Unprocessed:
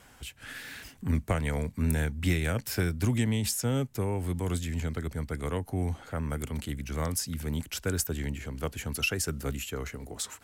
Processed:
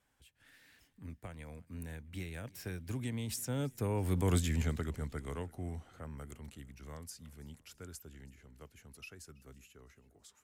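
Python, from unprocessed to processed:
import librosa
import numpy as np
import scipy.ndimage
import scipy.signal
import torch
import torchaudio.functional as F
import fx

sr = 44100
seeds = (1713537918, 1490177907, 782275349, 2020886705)

y = fx.doppler_pass(x, sr, speed_mps=15, closest_m=4.9, pass_at_s=4.36)
y = fx.echo_feedback(y, sr, ms=329, feedback_pct=50, wet_db=-23.5)
y = y * 10.0 ** (1.0 / 20.0)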